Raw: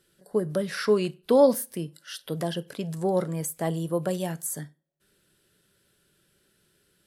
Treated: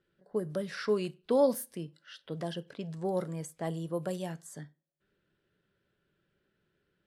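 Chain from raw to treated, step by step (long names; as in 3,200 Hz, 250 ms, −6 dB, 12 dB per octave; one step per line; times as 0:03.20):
low-pass that shuts in the quiet parts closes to 2,300 Hz, open at −21.5 dBFS
level −7 dB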